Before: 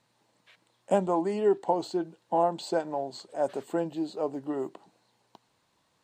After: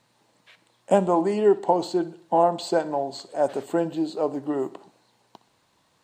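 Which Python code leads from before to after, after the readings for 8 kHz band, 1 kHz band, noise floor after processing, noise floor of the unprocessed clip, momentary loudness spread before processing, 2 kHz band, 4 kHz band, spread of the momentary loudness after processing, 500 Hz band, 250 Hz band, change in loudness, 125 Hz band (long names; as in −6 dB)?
+5.5 dB, +5.5 dB, −66 dBFS, −72 dBFS, 8 LU, +5.5 dB, +5.5 dB, 9 LU, +5.5 dB, +5.5 dB, +5.5 dB, +5.5 dB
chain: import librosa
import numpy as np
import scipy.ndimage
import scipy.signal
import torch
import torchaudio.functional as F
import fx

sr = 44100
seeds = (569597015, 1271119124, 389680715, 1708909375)

y = fx.echo_feedback(x, sr, ms=62, feedback_pct=50, wet_db=-18.0)
y = y * 10.0 ** (5.5 / 20.0)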